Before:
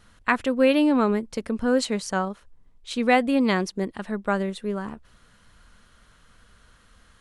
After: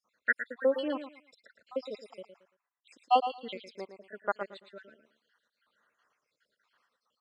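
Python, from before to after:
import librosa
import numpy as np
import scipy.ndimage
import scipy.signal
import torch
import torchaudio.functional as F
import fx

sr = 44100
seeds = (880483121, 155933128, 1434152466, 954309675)

p1 = fx.spec_dropout(x, sr, seeds[0], share_pct=73)
p2 = fx.bandpass_edges(p1, sr, low_hz=520.0, high_hz=4800.0)
p3 = p2 + fx.echo_feedback(p2, sr, ms=113, feedback_pct=28, wet_db=-7.0, dry=0)
y = fx.upward_expand(p3, sr, threshold_db=-40.0, expansion=1.5)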